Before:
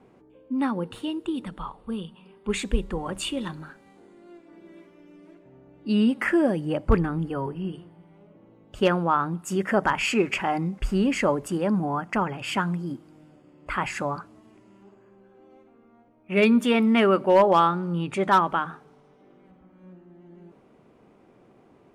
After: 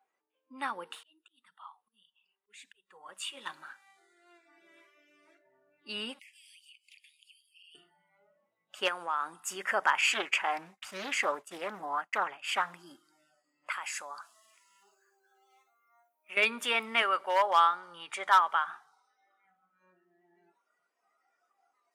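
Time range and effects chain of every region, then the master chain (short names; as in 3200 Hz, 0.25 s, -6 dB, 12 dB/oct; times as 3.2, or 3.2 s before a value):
0.95–3.46 flange 1.7 Hz, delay 1 ms, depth 7.9 ms, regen -37% + auto swell 0.794 s
6.19–7.75 steep high-pass 2300 Hz 72 dB/oct + compressor 8:1, threshold -53 dBFS
8.88–9.4 HPF 160 Hz + bell 8700 Hz +15 dB 0.58 oct + compressor 4:1, threshold -24 dBFS
10.01–12.74 notch 5300 Hz, Q 18 + expander -30 dBFS + Doppler distortion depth 0.48 ms
13.72–16.37 tone controls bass -6 dB, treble +11 dB + compressor 2:1, threshold -40 dBFS
17.02–18.68 bell 240 Hz -10.5 dB 1.5 oct + notch 2600 Hz, Q 8.7
whole clip: spectral noise reduction 18 dB; HPF 1000 Hz 12 dB/oct; notch 4300 Hz, Q 21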